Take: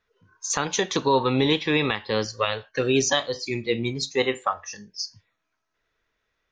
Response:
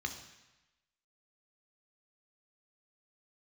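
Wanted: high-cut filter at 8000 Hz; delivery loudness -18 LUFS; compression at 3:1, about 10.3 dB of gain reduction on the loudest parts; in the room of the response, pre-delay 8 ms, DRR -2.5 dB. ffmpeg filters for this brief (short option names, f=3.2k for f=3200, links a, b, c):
-filter_complex "[0:a]lowpass=8k,acompressor=threshold=-31dB:ratio=3,asplit=2[a][b];[1:a]atrim=start_sample=2205,adelay=8[c];[b][c]afir=irnorm=-1:irlink=0,volume=0.5dB[d];[a][d]amix=inputs=2:normalize=0,volume=11.5dB"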